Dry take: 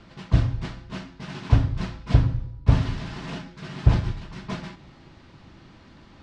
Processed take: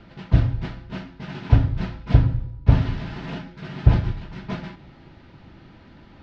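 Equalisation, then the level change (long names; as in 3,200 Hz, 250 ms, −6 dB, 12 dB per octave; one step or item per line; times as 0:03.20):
Butterworth band-reject 1,100 Hz, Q 7.9
high-frequency loss of the air 160 metres
+2.5 dB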